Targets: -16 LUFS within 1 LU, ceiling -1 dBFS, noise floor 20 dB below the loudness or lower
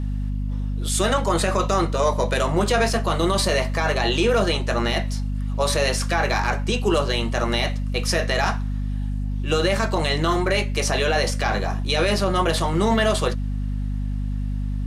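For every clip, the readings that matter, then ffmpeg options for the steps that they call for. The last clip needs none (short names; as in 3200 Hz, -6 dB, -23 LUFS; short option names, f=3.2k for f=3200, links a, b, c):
hum 50 Hz; harmonics up to 250 Hz; hum level -22 dBFS; loudness -22.5 LUFS; peak -7.0 dBFS; loudness target -16.0 LUFS
-> -af "bandreject=f=50:t=h:w=4,bandreject=f=100:t=h:w=4,bandreject=f=150:t=h:w=4,bandreject=f=200:t=h:w=4,bandreject=f=250:t=h:w=4"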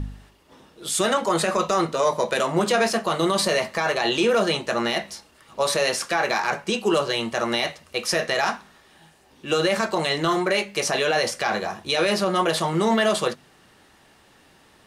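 hum none; loudness -22.5 LUFS; peak -8.5 dBFS; loudness target -16.0 LUFS
-> -af "volume=6.5dB"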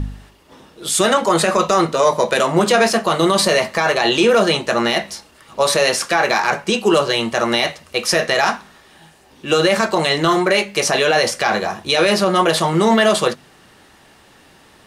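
loudness -16.0 LUFS; peak -2.0 dBFS; noise floor -49 dBFS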